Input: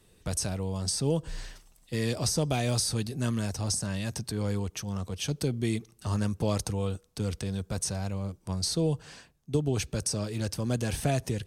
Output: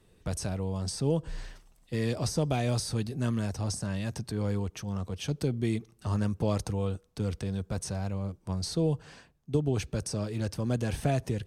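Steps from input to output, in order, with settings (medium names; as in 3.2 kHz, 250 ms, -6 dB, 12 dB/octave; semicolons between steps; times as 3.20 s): treble shelf 3.3 kHz -8.5 dB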